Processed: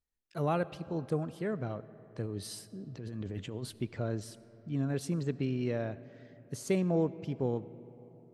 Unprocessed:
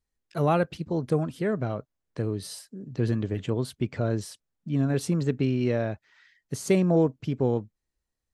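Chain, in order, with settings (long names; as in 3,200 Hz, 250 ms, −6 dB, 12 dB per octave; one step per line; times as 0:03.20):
0:02.26–0:03.79: compressor whose output falls as the input rises −31 dBFS, ratio −1
comb and all-pass reverb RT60 4.1 s, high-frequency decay 0.4×, pre-delay 35 ms, DRR 17 dB
level −7.5 dB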